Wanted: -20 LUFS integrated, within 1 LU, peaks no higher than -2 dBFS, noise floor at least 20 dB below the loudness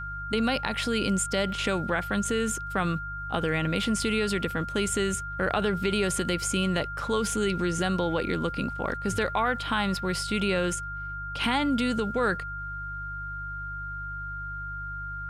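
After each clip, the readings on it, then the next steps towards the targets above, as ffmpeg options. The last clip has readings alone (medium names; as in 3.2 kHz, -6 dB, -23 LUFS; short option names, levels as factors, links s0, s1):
hum 50 Hz; highest harmonic 150 Hz; hum level -37 dBFS; steady tone 1.4 kHz; tone level -34 dBFS; loudness -28.0 LUFS; peak level -10.5 dBFS; loudness target -20.0 LUFS
-> -af "bandreject=f=50:t=h:w=4,bandreject=f=100:t=h:w=4,bandreject=f=150:t=h:w=4"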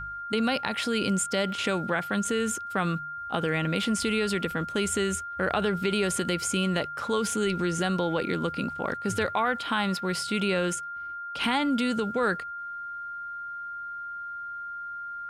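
hum not found; steady tone 1.4 kHz; tone level -34 dBFS
-> -af "bandreject=f=1400:w=30"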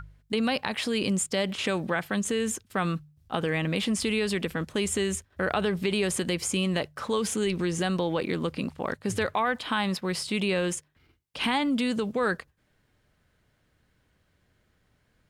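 steady tone not found; loudness -28.0 LUFS; peak level -11.5 dBFS; loudness target -20.0 LUFS
-> -af "volume=2.51"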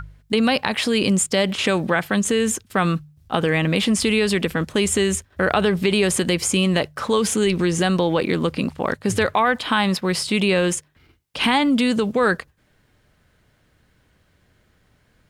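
loudness -20.5 LUFS; peak level -3.5 dBFS; noise floor -62 dBFS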